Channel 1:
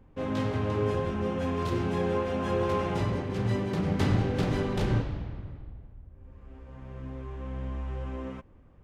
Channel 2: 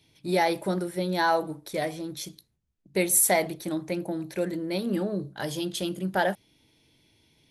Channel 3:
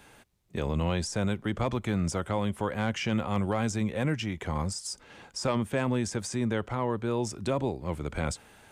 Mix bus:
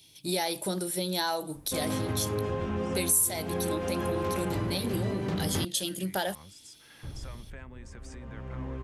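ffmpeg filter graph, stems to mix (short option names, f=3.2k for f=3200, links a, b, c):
-filter_complex "[0:a]adelay=1550,volume=2dB,asplit=3[a][b][c];[a]atrim=end=5.65,asetpts=PTS-STARTPTS,afade=t=out:st=5.646:d=0.004:c=hsin[d];[b]atrim=start=5.65:end=7.03,asetpts=PTS-STARTPTS,volume=0[e];[c]atrim=start=7.03,asetpts=PTS-STARTPTS,afade=t=in:d=0.004:c=hsin[f];[d][e][f]concat=n=3:v=0:a=1[g];[1:a]aexciter=amount=4.6:drive=1.9:freq=2.8k,volume=-1dB[h];[2:a]acompressor=threshold=-36dB:ratio=6,equalizer=f=1.8k:t=o:w=1.1:g=9.5,adelay=1800,volume=-11.5dB[i];[g][h][i]amix=inputs=3:normalize=0,acompressor=threshold=-28dB:ratio=3"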